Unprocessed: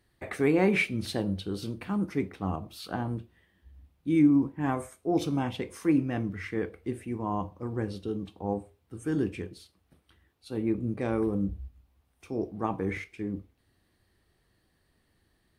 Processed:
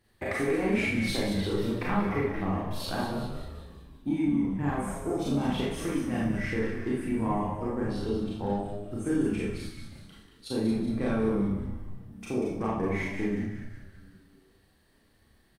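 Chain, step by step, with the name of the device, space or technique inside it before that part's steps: 1.43–2.36 graphic EQ 125/250/500/1000/2000/4000/8000 Hz +4/-3/+8/+7/+9/-11/-10 dB; drum-bus smash (transient shaper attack +8 dB, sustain +1 dB; compressor 6:1, threshold -27 dBFS, peak gain reduction 13 dB; soft clip -20 dBFS, distortion -21 dB); frequency-shifting echo 0.188 s, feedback 54%, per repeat -97 Hz, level -8 dB; Schroeder reverb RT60 0.55 s, combs from 28 ms, DRR -5 dB; gain -2 dB

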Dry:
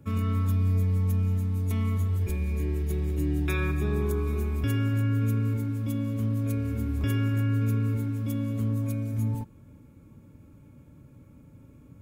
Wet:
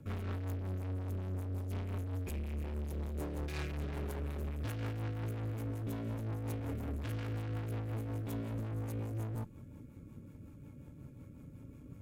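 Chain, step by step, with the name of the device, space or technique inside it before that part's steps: overdriven rotary cabinet (tube stage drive 39 dB, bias 0.5; rotary speaker horn 5.5 Hz); gain +3.5 dB

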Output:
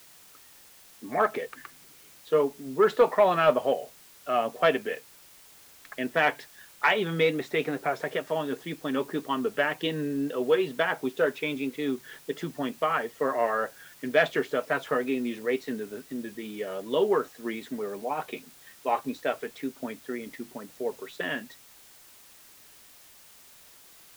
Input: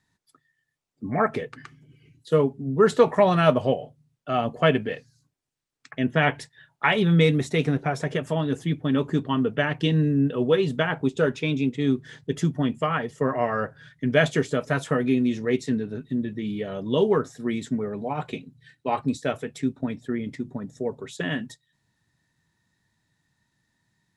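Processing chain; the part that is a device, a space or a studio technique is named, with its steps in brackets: tape answering machine (BPF 390–3300 Hz; soft clip -9 dBFS, distortion -23 dB; wow and flutter; white noise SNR 24 dB)

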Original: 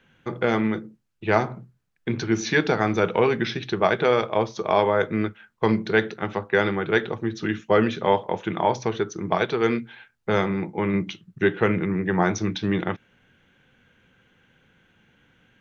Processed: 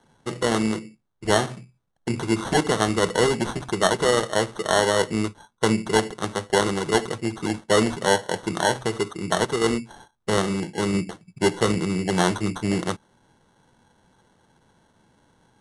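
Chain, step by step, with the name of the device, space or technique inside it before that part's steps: crushed at another speed (playback speed 2×; sample-and-hold 9×; playback speed 0.5×)

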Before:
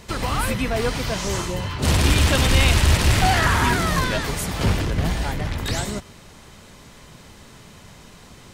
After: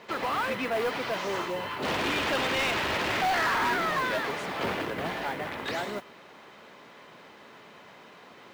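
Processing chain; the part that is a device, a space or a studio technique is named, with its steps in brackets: carbon microphone (BPF 360–2700 Hz; soft clip -22.5 dBFS, distortion -11 dB; modulation noise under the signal 24 dB)

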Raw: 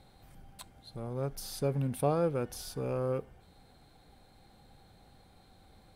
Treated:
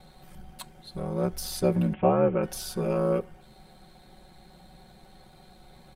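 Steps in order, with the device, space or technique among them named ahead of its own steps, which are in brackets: 1.93–2.43 Chebyshev low-pass 3000 Hz, order 6; ring-modulated robot voice (ring modulator 37 Hz; comb 5.4 ms, depth 98%); gain +7 dB

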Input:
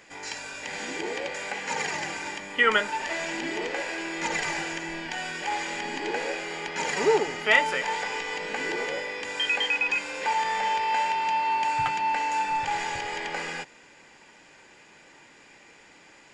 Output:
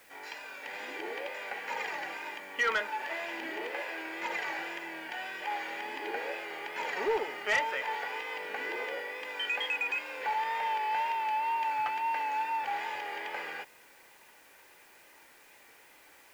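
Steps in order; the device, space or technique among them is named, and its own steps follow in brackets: tape answering machine (BPF 400–3100 Hz; soft clip -16.5 dBFS, distortion -18 dB; wow and flutter; white noise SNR 27 dB); gain -4.5 dB

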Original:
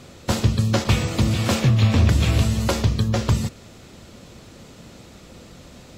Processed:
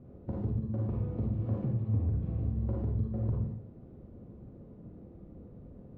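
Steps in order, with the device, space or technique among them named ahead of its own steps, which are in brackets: television next door (compressor 5:1, threshold -24 dBFS, peak gain reduction 11.5 dB; LPF 390 Hz 12 dB/oct; reverb RT60 0.45 s, pre-delay 39 ms, DRR -2.5 dB); gain -7 dB

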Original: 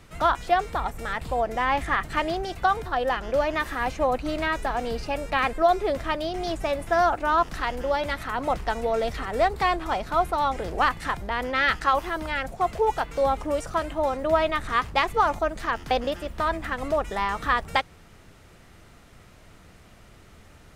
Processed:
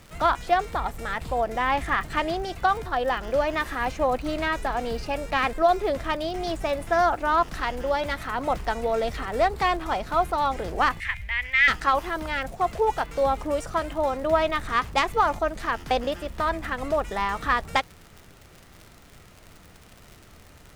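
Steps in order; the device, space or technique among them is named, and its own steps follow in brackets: record under a worn stylus (tracing distortion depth 0.035 ms; crackle 93/s -36 dBFS; pink noise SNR 35 dB); 11–11.68 EQ curve 100 Hz 0 dB, 300 Hz -29 dB, 1400 Hz -10 dB, 2100 Hz +12 dB, 4400 Hz -7 dB

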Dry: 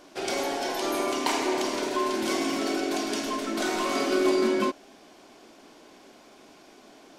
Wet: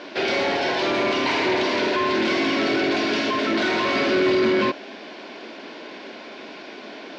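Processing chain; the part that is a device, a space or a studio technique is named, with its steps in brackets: overdrive pedal into a guitar cabinet (overdrive pedal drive 26 dB, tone 4600 Hz, clips at -12 dBFS; speaker cabinet 110–4300 Hz, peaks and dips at 120 Hz +3 dB, 210 Hz +5 dB, 770 Hz -7 dB, 1200 Hz -8 dB, 3200 Hz -3 dB)

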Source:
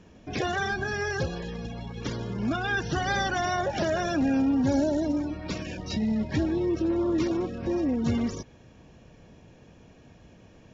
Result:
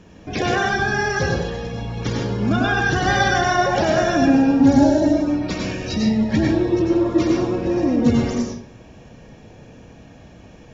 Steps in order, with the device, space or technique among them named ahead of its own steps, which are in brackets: bathroom (reverb RT60 0.50 s, pre-delay 89 ms, DRR -0.5 dB); gain +6 dB

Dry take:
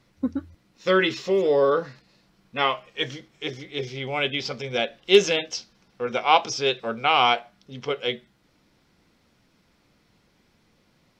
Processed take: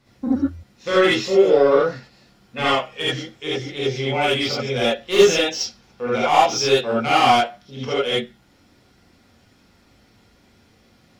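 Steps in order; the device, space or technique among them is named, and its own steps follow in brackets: saturation between pre-emphasis and de-emphasis (high shelf 3100 Hz +10 dB; soft clip -16 dBFS, distortion -9 dB; high shelf 3100 Hz -10 dB); non-linear reverb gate 0.1 s rising, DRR -8 dB; gain -1 dB

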